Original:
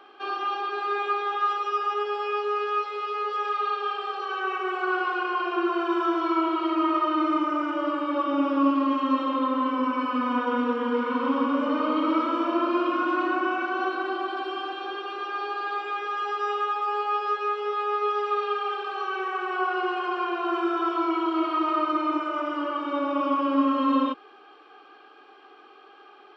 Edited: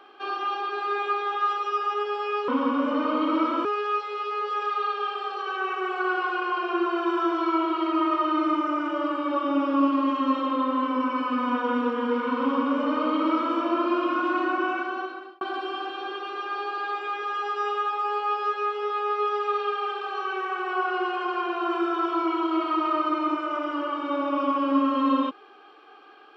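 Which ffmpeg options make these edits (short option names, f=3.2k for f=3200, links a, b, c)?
-filter_complex "[0:a]asplit=4[a][b][c][d];[a]atrim=end=2.482[e];[b]atrim=start=11.228:end=12.402[f];[c]atrim=start=2.478:end=14.24,asetpts=PTS-STARTPTS,afade=t=out:st=11.082:d=0.68[g];[d]atrim=start=14.24,asetpts=PTS-STARTPTS,afade=t=in:d=0.004:c=hsin[h];[e][f]acrossfade=d=0.004:c1=hsin:c2=hsin[i];[g][h]concat=n=2:v=0:a=1[j];[i][j]acrossfade=d=0.004:c1=hsin:c2=hsin"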